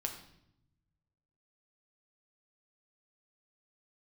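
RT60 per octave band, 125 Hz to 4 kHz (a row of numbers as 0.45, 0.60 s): 1.9, 1.4, 0.85, 0.70, 0.65, 0.65 s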